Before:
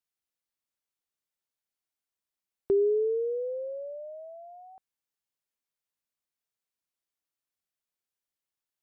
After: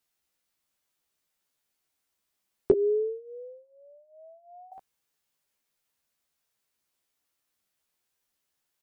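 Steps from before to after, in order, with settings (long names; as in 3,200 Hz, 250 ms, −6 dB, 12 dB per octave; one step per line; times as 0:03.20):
0:02.72–0:04.72: pair of resonant band-passes 550 Hz, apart 1.3 octaves
double-tracking delay 14 ms −3.5 dB
level +8.5 dB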